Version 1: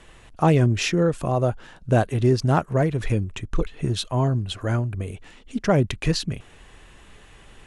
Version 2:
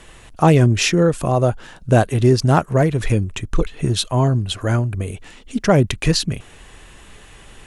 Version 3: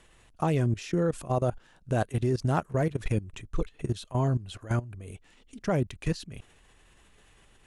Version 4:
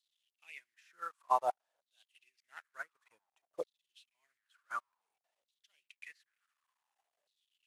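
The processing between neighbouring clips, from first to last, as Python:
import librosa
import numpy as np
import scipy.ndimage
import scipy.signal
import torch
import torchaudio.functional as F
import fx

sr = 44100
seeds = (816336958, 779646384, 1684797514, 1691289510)

y1 = fx.high_shelf(x, sr, hz=6400.0, db=7.0)
y1 = y1 * 10.0 ** (5.0 / 20.0)
y2 = fx.level_steps(y1, sr, step_db=17)
y2 = y2 * 10.0 ** (-7.5 / 20.0)
y3 = fx.delta_mod(y2, sr, bps=64000, step_db=-41.0)
y3 = fx.filter_lfo_highpass(y3, sr, shape='saw_down', hz=0.55, low_hz=560.0, high_hz=4100.0, q=6.7)
y3 = fx.upward_expand(y3, sr, threshold_db=-45.0, expansion=2.5)
y3 = y3 * 10.0 ** (-3.5 / 20.0)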